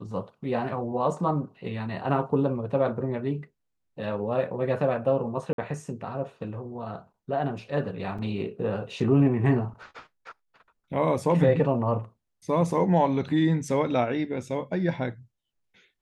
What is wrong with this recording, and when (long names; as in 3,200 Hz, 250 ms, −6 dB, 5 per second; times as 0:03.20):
0:05.53–0:05.58: drop-out 52 ms
0:08.18–0:08.19: drop-out 5.4 ms